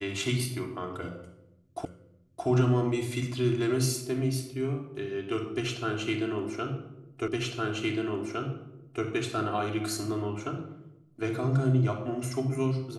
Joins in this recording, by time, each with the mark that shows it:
1.85 repeat of the last 0.62 s
7.28 repeat of the last 1.76 s

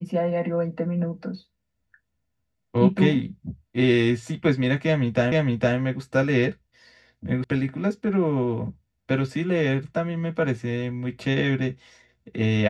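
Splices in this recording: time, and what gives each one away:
5.32 repeat of the last 0.46 s
7.44 sound cut off

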